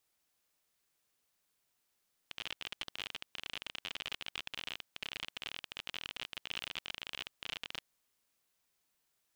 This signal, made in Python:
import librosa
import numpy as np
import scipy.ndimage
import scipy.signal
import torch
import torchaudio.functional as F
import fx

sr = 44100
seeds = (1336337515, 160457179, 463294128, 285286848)

y = fx.geiger_clicks(sr, seeds[0], length_s=5.49, per_s=42.0, level_db=-23.5)